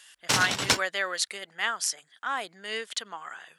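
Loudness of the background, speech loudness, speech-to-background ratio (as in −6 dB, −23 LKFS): −26.0 LKFS, −30.5 LKFS, −4.5 dB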